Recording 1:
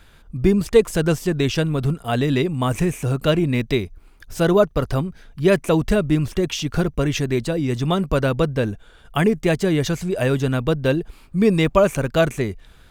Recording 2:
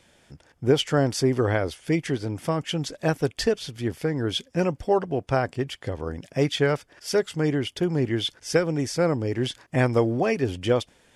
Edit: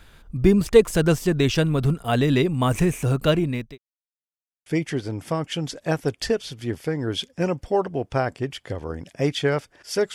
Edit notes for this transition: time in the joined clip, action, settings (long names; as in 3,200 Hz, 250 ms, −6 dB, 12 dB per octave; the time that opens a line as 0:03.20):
recording 1
0:03.05–0:03.78: fade out equal-power
0:03.78–0:04.66: silence
0:04.66: continue with recording 2 from 0:01.83